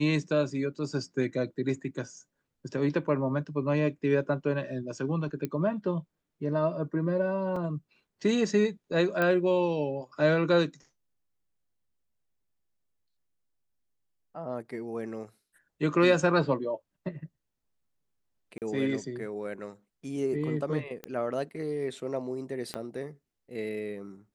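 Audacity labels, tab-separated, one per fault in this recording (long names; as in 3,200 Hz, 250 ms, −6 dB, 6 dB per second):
5.450000	5.450000	click −19 dBFS
7.560000	7.560000	drop-out 3.9 ms
9.220000	9.220000	click −15 dBFS
18.580000	18.620000	drop-out 38 ms
21.040000	21.040000	click −22 dBFS
22.740000	22.740000	click −20 dBFS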